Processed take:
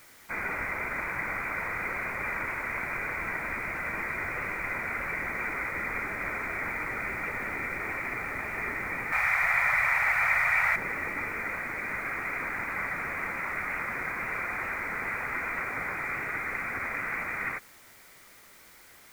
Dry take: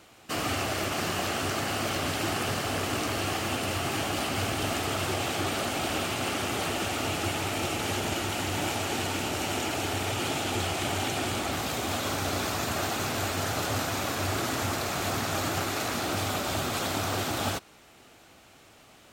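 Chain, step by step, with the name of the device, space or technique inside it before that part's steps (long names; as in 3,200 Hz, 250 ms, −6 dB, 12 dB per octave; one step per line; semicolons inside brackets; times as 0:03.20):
scrambled radio voice (band-pass filter 400–3,200 Hz; voice inversion scrambler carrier 2,700 Hz; white noise bed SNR 22 dB)
0:09.12–0:10.76: drawn EQ curve 140 Hz 0 dB, 300 Hz −24 dB, 710 Hz +8 dB, 3,900 Hz +10 dB, 13,000 Hz +5 dB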